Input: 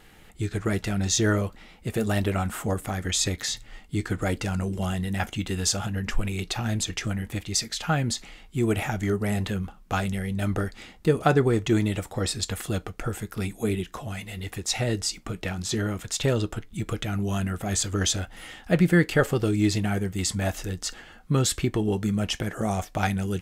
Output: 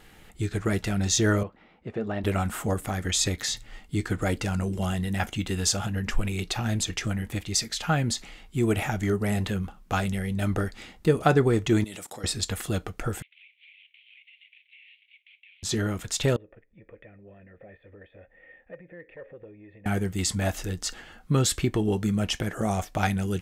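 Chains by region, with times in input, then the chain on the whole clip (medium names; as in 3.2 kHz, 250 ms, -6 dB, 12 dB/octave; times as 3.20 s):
1.43–2.24 s: high-pass 280 Hz 6 dB/octave + tape spacing loss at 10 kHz 38 dB
11.84–12.24 s: high-pass 190 Hz + peaking EQ 8.9 kHz +11.5 dB 2.3 oct + level held to a coarse grid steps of 20 dB
13.22–15.63 s: CVSD coder 16 kbps + Chebyshev high-pass 2.2 kHz, order 6 + compression, threshold -50 dBFS
16.36–19.86 s: compression, threshold -28 dBFS + cascade formant filter e + transformer saturation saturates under 420 Hz
whole clip: none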